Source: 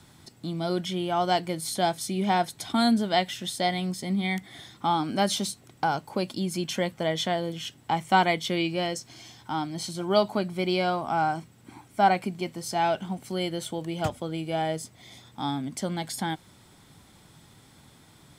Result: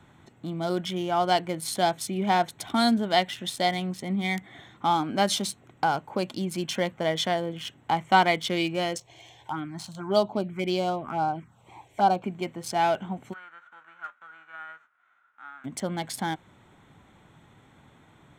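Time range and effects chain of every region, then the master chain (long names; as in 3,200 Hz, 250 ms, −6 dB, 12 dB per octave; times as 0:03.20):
0:08.97–0:12.24: high-shelf EQ 6,800 Hz −6 dB + phaser swept by the level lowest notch 200 Hz, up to 2,000 Hz, full sweep at −21 dBFS + one half of a high-frequency compander encoder only
0:13.32–0:15.64: spectral envelope flattened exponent 0.3 + resonant band-pass 1,400 Hz, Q 9.2
whole clip: adaptive Wiener filter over 9 samples; low-shelf EQ 380 Hz −4.5 dB; level +2.5 dB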